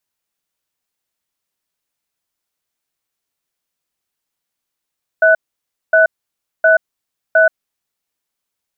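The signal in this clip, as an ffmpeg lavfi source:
-f lavfi -i "aevalsrc='0.335*(sin(2*PI*645*t)+sin(2*PI*1490*t))*clip(min(mod(t,0.71),0.13-mod(t,0.71))/0.005,0,1)':d=2.45:s=44100"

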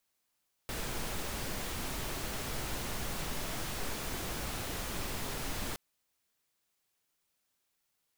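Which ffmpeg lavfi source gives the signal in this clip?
-f lavfi -i "anoisesrc=c=pink:a=0.0724:d=5.07:r=44100:seed=1"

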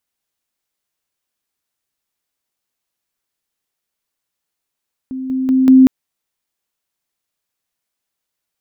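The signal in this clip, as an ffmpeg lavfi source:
-f lavfi -i "aevalsrc='pow(10,(-21.5+6*floor(t/0.19))/20)*sin(2*PI*261*t)':d=0.76:s=44100"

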